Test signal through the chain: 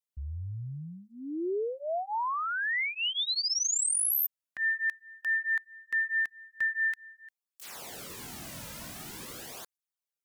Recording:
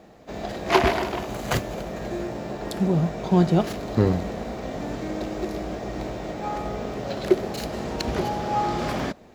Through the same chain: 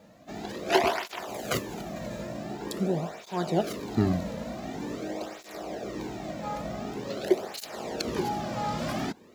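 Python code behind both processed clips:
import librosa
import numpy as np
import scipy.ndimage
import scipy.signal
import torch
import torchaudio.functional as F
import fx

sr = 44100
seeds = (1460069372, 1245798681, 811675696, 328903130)

y = fx.high_shelf(x, sr, hz=4900.0, db=6.0)
y = fx.flanger_cancel(y, sr, hz=0.46, depth_ms=2.8)
y = F.gain(torch.from_numpy(y), -2.0).numpy()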